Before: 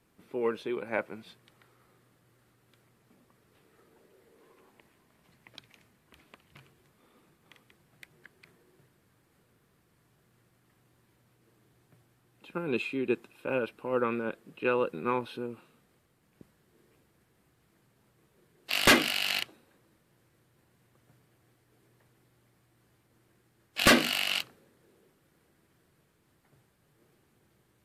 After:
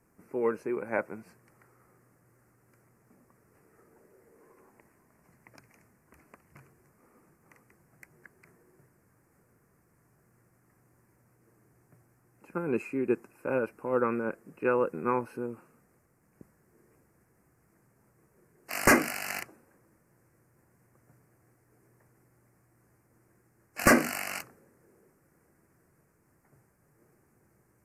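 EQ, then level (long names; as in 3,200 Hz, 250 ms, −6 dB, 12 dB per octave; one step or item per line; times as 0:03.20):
Butterworth band-reject 3,500 Hz, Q 0.97
+1.5 dB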